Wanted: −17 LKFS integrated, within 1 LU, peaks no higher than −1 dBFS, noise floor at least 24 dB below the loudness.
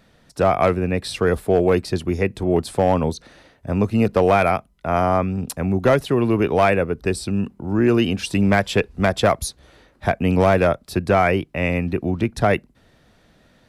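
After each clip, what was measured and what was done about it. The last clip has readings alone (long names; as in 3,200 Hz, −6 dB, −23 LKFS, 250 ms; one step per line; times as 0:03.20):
share of clipped samples 0.8%; peaks flattened at −8.0 dBFS; integrated loudness −20.0 LKFS; sample peak −8.0 dBFS; target loudness −17.0 LKFS
→ clipped peaks rebuilt −8 dBFS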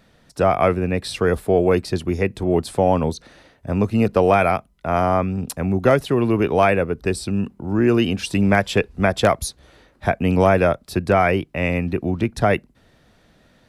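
share of clipped samples 0.0%; integrated loudness −20.0 LKFS; sample peak −2.0 dBFS; target loudness −17.0 LKFS
→ level +3 dB
brickwall limiter −1 dBFS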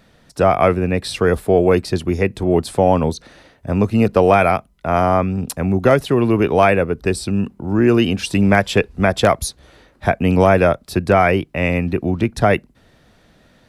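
integrated loudness −17.0 LKFS; sample peak −1.0 dBFS; background noise floor −54 dBFS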